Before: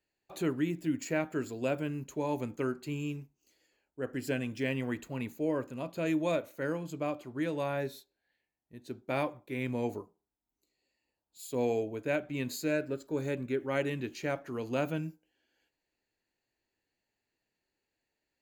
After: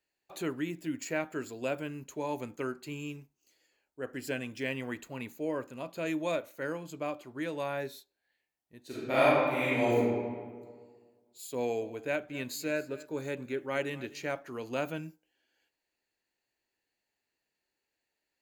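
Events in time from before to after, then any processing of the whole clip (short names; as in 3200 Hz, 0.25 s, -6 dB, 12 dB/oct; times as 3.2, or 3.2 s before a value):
8.86–9.99 reverb throw, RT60 1.7 s, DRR -9.5 dB
11.56–14.26 echo 0.249 s -18.5 dB
whole clip: low shelf 350 Hz -8 dB; gain +1 dB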